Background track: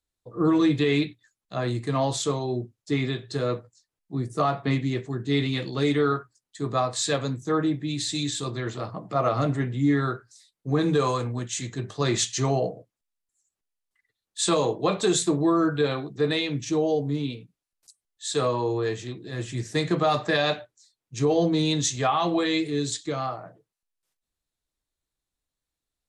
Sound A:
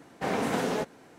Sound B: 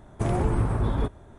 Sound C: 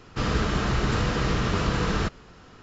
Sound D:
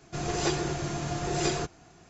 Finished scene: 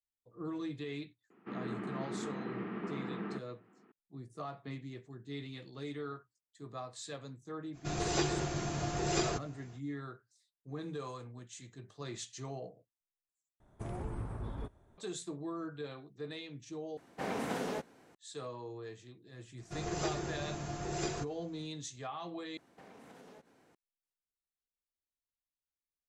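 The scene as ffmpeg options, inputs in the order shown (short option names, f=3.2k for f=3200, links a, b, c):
-filter_complex "[4:a]asplit=2[a][b];[1:a]asplit=2[c][d];[0:a]volume=-19dB[e];[3:a]highpass=f=200:w=0.5412,highpass=f=200:w=1.3066,equalizer=f=200:t=q:w=4:g=7,equalizer=f=360:t=q:w=4:g=6,equalizer=f=550:t=q:w=4:g=-9,equalizer=f=1k:t=q:w=4:g=-4,equalizer=f=1.5k:t=q:w=4:g=-6,lowpass=f=2.1k:w=0.5412,lowpass=f=2.1k:w=1.3066[f];[b]equalizer=f=3.7k:t=o:w=1.5:g=-2.5[g];[d]acompressor=threshold=-40dB:ratio=6:attack=3.2:release=140:knee=1:detection=peak[h];[e]asplit=4[i][j][k][l];[i]atrim=end=13.604[m];[2:a]atrim=end=1.38,asetpts=PTS-STARTPTS,volume=-16dB[n];[j]atrim=start=14.976:end=16.974[o];[c]atrim=end=1.18,asetpts=PTS-STARTPTS,volume=-8dB[p];[k]atrim=start=18.146:end=22.574[q];[h]atrim=end=1.18,asetpts=PTS-STARTPTS,volume=-13dB[r];[l]atrim=start=23.746[s];[f]atrim=end=2.62,asetpts=PTS-STARTPTS,volume=-13dB,afade=t=in:d=0.004:c=hsin,afade=t=out:st=2.616:d=0.004:c=hsin,adelay=1300[t];[a]atrim=end=2.09,asetpts=PTS-STARTPTS,volume=-4dB,afade=t=in:d=0.05,afade=t=out:st=2.04:d=0.05,adelay=7720[u];[g]atrim=end=2.09,asetpts=PTS-STARTPTS,volume=-8dB,afade=t=in:d=0.004:c=hsin,afade=t=out:st=2.086:d=0.004:c=hsin,adelay=19580[v];[m][n]acrossfade=d=0.004:c1=hsin:c2=hsin[w];[w][o]acrossfade=d=0.004:c1=hsin:c2=hsin[x];[x][p]acrossfade=d=0.004:c1=hsin:c2=hsin[y];[y][q]acrossfade=d=0.004:c1=hsin:c2=hsin[z];[z][r]acrossfade=d=0.004:c1=hsin:c2=hsin[aa];[aa][s]acrossfade=d=0.004:c1=hsin:c2=hsin[ab];[ab][t][u][v]amix=inputs=4:normalize=0"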